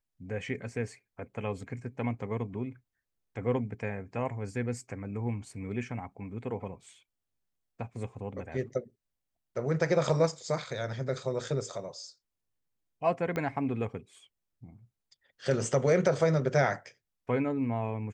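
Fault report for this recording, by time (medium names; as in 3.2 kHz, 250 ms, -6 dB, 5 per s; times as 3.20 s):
13.36 s: pop -20 dBFS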